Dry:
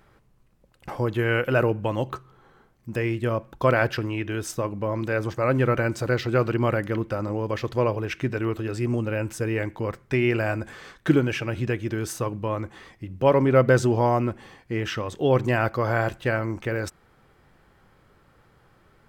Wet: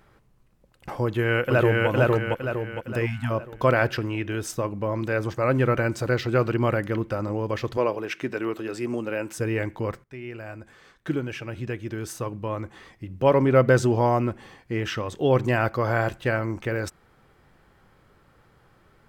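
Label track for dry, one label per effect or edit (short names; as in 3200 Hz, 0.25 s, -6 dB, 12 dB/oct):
1.040000	1.880000	echo throw 0.46 s, feedback 45%, level -0.5 dB
3.060000	3.300000	spectral delete 280–620 Hz
7.770000	9.370000	HPF 240 Hz
10.040000	13.360000	fade in, from -18.5 dB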